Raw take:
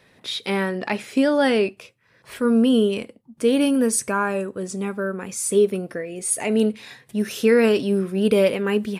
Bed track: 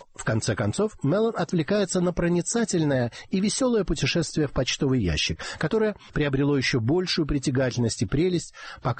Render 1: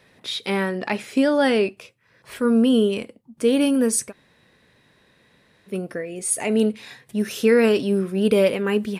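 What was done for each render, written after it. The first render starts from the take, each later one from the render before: 4.08–5.71 room tone, crossfade 0.10 s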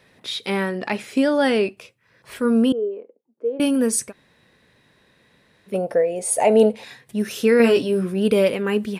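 2.72–3.6 ladder band-pass 480 Hz, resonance 60%; 5.74–6.84 band shelf 660 Hz +13.5 dB 1.2 oct; 7.58–8.14 doubler 17 ms -3.5 dB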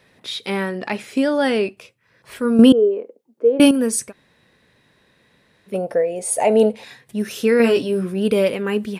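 2.59–3.71 gain +8.5 dB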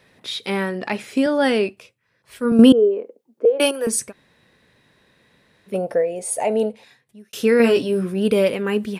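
1.26–2.52 three-band expander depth 40%; 3.45–3.87 steep high-pass 370 Hz; 5.89–7.33 fade out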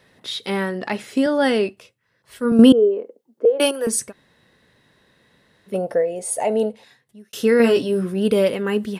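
notch 2400 Hz, Q 9.9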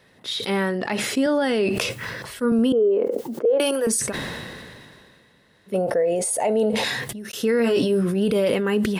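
limiter -13 dBFS, peak gain reduction 11.5 dB; sustainer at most 26 dB/s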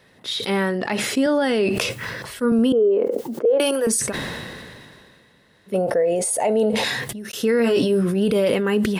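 gain +1.5 dB

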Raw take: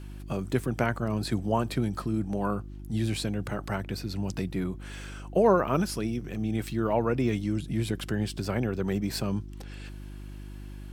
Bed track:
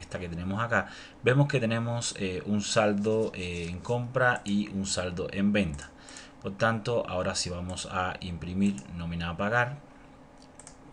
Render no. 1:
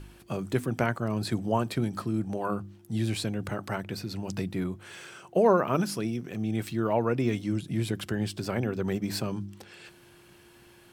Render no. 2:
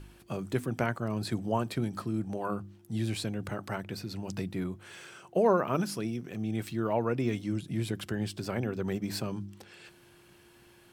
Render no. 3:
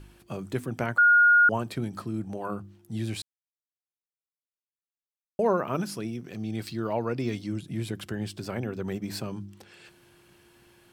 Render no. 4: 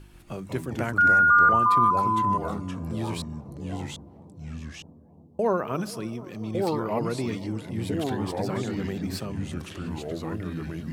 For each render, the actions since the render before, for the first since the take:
de-hum 50 Hz, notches 6
gain -3 dB
0.98–1.49 bleep 1430 Hz -14.5 dBFS; 3.22–5.39 mute; 6.26–7.47 bell 4600 Hz +12 dB 0.39 oct
analogue delay 0.242 s, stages 2048, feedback 80%, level -18.5 dB; echoes that change speed 0.135 s, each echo -3 st, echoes 2

